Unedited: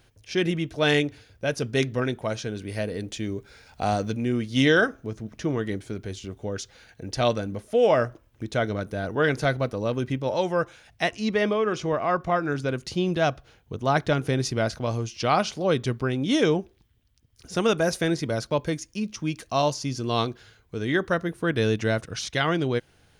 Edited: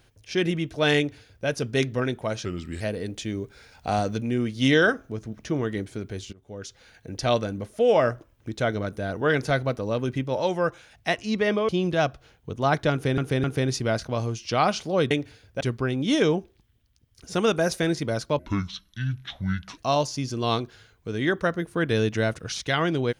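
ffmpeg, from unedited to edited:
ffmpeg -i in.wav -filter_complex "[0:a]asplit=11[link_01][link_02][link_03][link_04][link_05][link_06][link_07][link_08][link_09][link_10][link_11];[link_01]atrim=end=2.454[link_12];[link_02]atrim=start=2.45:end=2.75,asetpts=PTS-STARTPTS,asetrate=37044,aresample=44100[link_13];[link_03]atrim=start=2.746:end=6.27,asetpts=PTS-STARTPTS,afade=type=out:start_time=3.52:duration=0.004:curve=hsin:silence=0.0749894[link_14];[link_04]atrim=start=6.27:end=11.632,asetpts=PTS-STARTPTS,afade=type=in:duration=0.9:curve=qsin:silence=0.0749894[link_15];[link_05]atrim=start=12.918:end=14.412[link_16];[link_06]atrim=start=14.148:end=14.412[link_17];[link_07]atrim=start=14.148:end=15.822[link_18];[link_08]atrim=start=0.968:end=1.472[link_19];[link_09]atrim=start=15.818:end=18.604[link_20];[link_10]atrim=start=18.6:end=19.45,asetpts=PTS-STARTPTS,asetrate=26901,aresample=44100[link_21];[link_11]atrim=start=19.446[link_22];[link_12][link_13]acrossfade=duration=0.004:curve1=hsin:curve2=hsin[link_23];[link_14][link_15]concat=n=2:v=0:a=1[link_24];[link_23][link_24]acrossfade=duration=0.004:curve1=hsin:curve2=hsin[link_25];[link_25][link_16]acrossfade=duration=0.004:curve1=hsin:curve2=hsin[link_26];[link_26][link_17]acrossfade=duration=0.004:curve1=hsin:curve2=hsin[link_27];[link_27][link_18]acrossfade=duration=0.004:curve1=hsin:curve2=hsin[link_28];[link_28][link_19]acrossfade=duration=0.004:curve1=hsin:curve2=hsin[link_29];[link_29][link_20]acrossfade=duration=0.004:curve1=hsin:curve2=hsin[link_30];[link_30][link_21]acrossfade=duration=0.004:curve1=hsin:curve2=hsin[link_31];[link_31][link_22]acrossfade=duration=0.004:curve1=hsin:curve2=hsin" out.wav

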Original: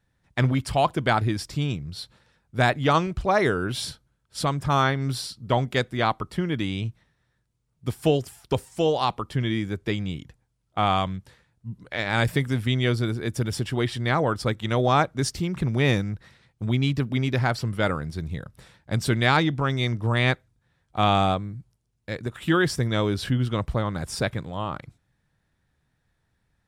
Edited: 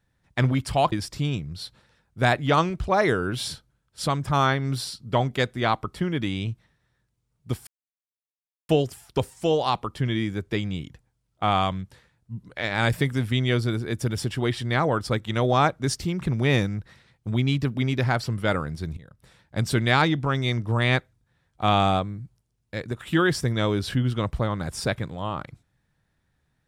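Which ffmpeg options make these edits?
ffmpeg -i in.wav -filter_complex "[0:a]asplit=4[link_01][link_02][link_03][link_04];[link_01]atrim=end=0.922[link_05];[link_02]atrim=start=1.288:end=8.04,asetpts=PTS-STARTPTS,afade=type=out:start_time=6.748:duration=0.004:curve=hsin,apad=pad_dur=1.02[link_06];[link_03]atrim=start=8.04:end=18.32,asetpts=PTS-STARTPTS,afade=type=in:duration=0.004:curve=hsin,afade=type=out:start_time=10.276:duration=0.004:curve=hsin:silence=0.11885[link_07];[link_04]atrim=start=18.32,asetpts=PTS-STARTPTS,afade=type=in:duration=0.62:silence=0.11885[link_08];[link_06][link_07][link_08]concat=n=3:v=0:a=1[link_09];[link_05][link_09]acrossfade=duration=0.004:curve1=hsin:curve2=hsin" out.wav

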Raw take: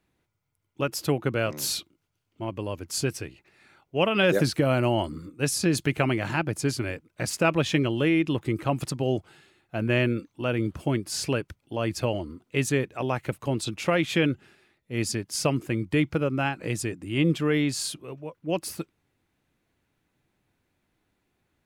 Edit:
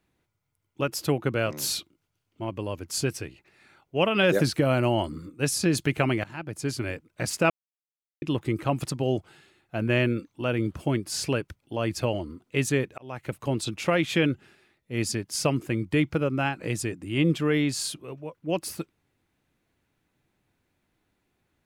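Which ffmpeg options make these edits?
ffmpeg -i in.wav -filter_complex "[0:a]asplit=5[link_01][link_02][link_03][link_04][link_05];[link_01]atrim=end=6.24,asetpts=PTS-STARTPTS,afade=type=out:start_time=6.236:duration=0.004:curve=hsin:silence=0.112202[link_06];[link_02]atrim=start=6.24:end=7.5,asetpts=PTS-STARTPTS,afade=type=in:duration=0.67:silence=0.112202,afade=type=out:start_time=1.256:duration=0.004:curve=hsin[link_07];[link_03]atrim=start=7.5:end=8.22,asetpts=PTS-STARTPTS,volume=0[link_08];[link_04]atrim=start=8.22:end=12.98,asetpts=PTS-STARTPTS,afade=type=in:duration=0.004:curve=hsin,afade=type=out:start_time=4.756:duration=0.004:curve=hsin[link_09];[link_05]atrim=start=12.98,asetpts=PTS-STARTPTS,afade=type=in:duration=0.43[link_10];[link_06][link_07][link_08][link_09][link_10]concat=n=5:v=0:a=1" out.wav

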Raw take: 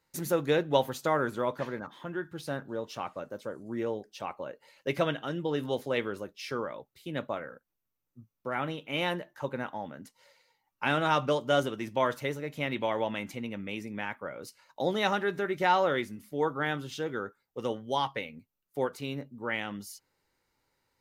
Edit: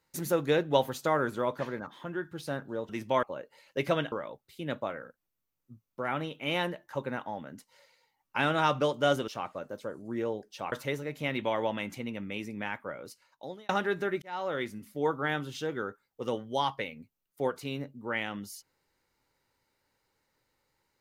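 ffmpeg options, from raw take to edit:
ffmpeg -i in.wav -filter_complex "[0:a]asplit=8[link_01][link_02][link_03][link_04][link_05][link_06][link_07][link_08];[link_01]atrim=end=2.892[link_09];[link_02]atrim=start=11.748:end=12.092[link_10];[link_03]atrim=start=4.328:end=5.222[link_11];[link_04]atrim=start=6.588:end=11.752[link_12];[link_05]atrim=start=2.888:end=4.332[link_13];[link_06]atrim=start=12.088:end=15.06,asetpts=PTS-STARTPTS,afade=type=out:start_time=2.172:duration=0.8[link_14];[link_07]atrim=start=15.06:end=15.59,asetpts=PTS-STARTPTS,afade=type=in:duration=0.004:curve=hsin,afade=type=out:start_time=0.526:duration=0.004:curve=hsin[link_15];[link_08]atrim=start=15.59,asetpts=PTS-STARTPTS,afade=type=in:duration=0.56[link_16];[link_09][link_10]acrossfade=duration=0.004:curve1=hsin:curve2=hsin[link_17];[link_17][link_11]acrossfade=duration=0.004:curve1=hsin:curve2=hsin[link_18];[link_18][link_12]acrossfade=duration=0.004:curve1=hsin:curve2=hsin[link_19];[link_19][link_13]acrossfade=duration=0.004:curve1=hsin:curve2=hsin[link_20];[link_14][link_15][link_16]concat=n=3:v=0:a=1[link_21];[link_20][link_21]acrossfade=duration=0.004:curve1=hsin:curve2=hsin" out.wav

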